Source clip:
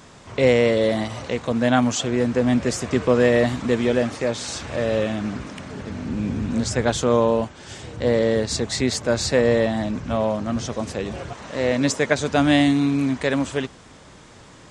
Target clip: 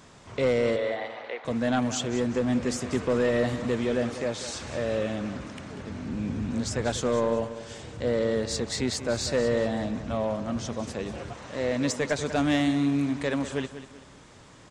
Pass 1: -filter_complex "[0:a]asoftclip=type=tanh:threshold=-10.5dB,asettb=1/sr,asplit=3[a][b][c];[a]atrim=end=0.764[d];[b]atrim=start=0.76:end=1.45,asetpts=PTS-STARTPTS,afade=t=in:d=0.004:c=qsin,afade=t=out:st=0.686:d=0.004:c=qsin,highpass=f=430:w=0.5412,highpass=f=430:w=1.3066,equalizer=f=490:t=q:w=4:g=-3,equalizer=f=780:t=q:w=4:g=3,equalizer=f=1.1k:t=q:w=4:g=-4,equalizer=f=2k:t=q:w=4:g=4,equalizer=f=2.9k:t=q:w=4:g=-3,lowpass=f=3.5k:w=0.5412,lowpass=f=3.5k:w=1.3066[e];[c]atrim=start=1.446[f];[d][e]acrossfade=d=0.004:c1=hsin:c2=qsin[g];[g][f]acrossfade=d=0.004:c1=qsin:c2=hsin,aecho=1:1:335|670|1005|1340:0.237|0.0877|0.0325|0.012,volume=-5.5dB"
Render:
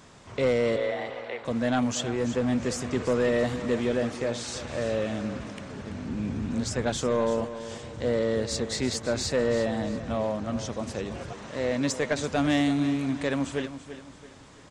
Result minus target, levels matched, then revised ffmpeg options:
echo 0.144 s late
-filter_complex "[0:a]asoftclip=type=tanh:threshold=-10.5dB,asettb=1/sr,asplit=3[a][b][c];[a]atrim=end=0.764[d];[b]atrim=start=0.76:end=1.45,asetpts=PTS-STARTPTS,afade=t=in:d=0.004:c=qsin,afade=t=out:st=0.686:d=0.004:c=qsin,highpass=f=430:w=0.5412,highpass=f=430:w=1.3066,equalizer=f=490:t=q:w=4:g=-3,equalizer=f=780:t=q:w=4:g=3,equalizer=f=1.1k:t=q:w=4:g=-4,equalizer=f=2k:t=q:w=4:g=4,equalizer=f=2.9k:t=q:w=4:g=-3,lowpass=f=3.5k:w=0.5412,lowpass=f=3.5k:w=1.3066[e];[c]atrim=start=1.446[f];[d][e]acrossfade=d=0.004:c1=hsin:c2=qsin[g];[g][f]acrossfade=d=0.004:c1=qsin:c2=hsin,aecho=1:1:191|382|573|764:0.237|0.0877|0.0325|0.012,volume=-5.5dB"

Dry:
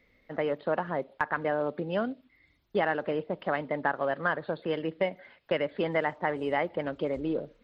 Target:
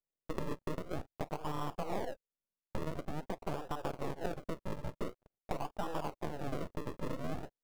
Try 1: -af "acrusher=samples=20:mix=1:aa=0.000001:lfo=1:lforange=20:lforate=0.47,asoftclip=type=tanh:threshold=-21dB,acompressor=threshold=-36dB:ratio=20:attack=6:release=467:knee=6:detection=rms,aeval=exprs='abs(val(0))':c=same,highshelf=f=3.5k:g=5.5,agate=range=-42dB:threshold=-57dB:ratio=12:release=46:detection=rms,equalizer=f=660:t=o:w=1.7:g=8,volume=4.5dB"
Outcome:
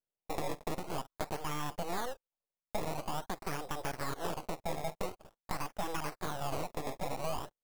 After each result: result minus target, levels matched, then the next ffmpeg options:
8000 Hz band +9.0 dB; decimation with a swept rate: distortion -11 dB; soft clip: distortion +9 dB
-af "acrusher=samples=20:mix=1:aa=0.000001:lfo=1:lforange=20:lforate=0.47,asoftclip=type=tanh:threshold=-21dB,acompressor=threshold=-36dB:ratio=20:attack=6:release=467:knee=6:detection=rms,aeval=exprs='abs(val(0))':c=same,highshelf=f=3.5k:g=-5,agate=range=-42dB:threshold=-57dB:ratio=12:release=46:detection=rms,equalizer=f=660:t=o:w=1.7:g=8,volume=4.5dB"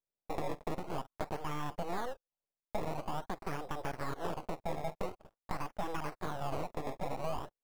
decimation with a swept rate: distortion -11 dB; soft clip: distortion +9 dB
-af "acrusher=samples=40:mix=1:aa=0.000001:lfo=1:lforange=40:lforate=0.47,asoftclip=type=tanh:threshold=-21dB,acompressor=threshold=-36dB:ratio=20:attack=6:release=467:knee=6:detection=rms,aeval=exprs='abs(val(0))':c=same,highshelf=f=3.5k:g=-5,agate=range=-42dB:threshold=-57dB:ratio=12:release=46:detection=rms,equalizer=f=660:t=o:w=1.7:g=8,volume=4.5dB"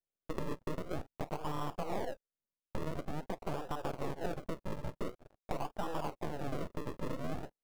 soft clip: distortion +9 dB
-af "acrusher=samples=40:mix=1:aa=0.000001:lfo=1:lforange=40:lforate=0.47,asoftclip=type=tanh:threshold=-15dB,acompressor=threshold=-36dB:ratio=20:attack=6:release=467:knee=6:detection=rms,aeval=exprs='abs(val(0))':c=same,highshelf=f=3.5k:g=-5,agate=range=-42dB:threshold=-57dB:ratio=12:release=46:detection=rms,equalizer=f=660:t=o:w=1.7:g=8,volume=4.5dB"

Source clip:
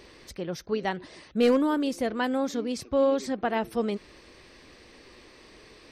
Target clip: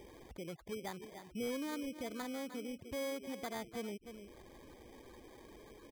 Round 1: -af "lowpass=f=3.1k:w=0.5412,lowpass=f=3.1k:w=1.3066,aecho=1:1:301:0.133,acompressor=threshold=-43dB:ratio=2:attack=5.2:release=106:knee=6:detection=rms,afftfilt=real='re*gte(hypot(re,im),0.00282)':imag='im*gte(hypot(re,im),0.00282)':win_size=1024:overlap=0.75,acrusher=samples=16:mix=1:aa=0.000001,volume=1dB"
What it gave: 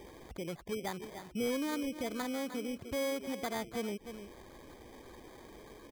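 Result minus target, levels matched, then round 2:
compressor: peak gain reduction -5 dB
-af "lowpass=f=3.1k:w=0.5412,lowpass=f=3.1k:w=1.3066,aecho=1:1:301:0.133,acompressor=threshold=-53.5dB:ratio=2:attack=5.2:release=106:knee=6:detection=rms,afftfilt=real='re*gte(hypot(re,im),0.00282)':imag='im*gte(hypot(re,im),0.00282)':win_size=1024:overlap=0.75,acrusher=samples=16:mix=1:aa=0.000001,volume=1dB"

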